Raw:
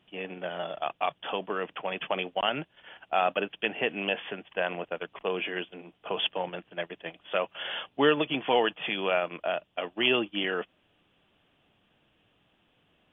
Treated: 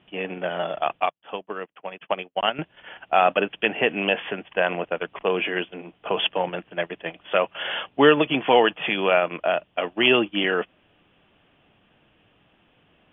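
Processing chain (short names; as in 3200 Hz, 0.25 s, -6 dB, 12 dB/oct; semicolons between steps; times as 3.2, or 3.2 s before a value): LPF 3200 Hz 24 dB/oct; 1–2.59 upward expander 2.5:1, over -47 dBFS; gain +7.5 dB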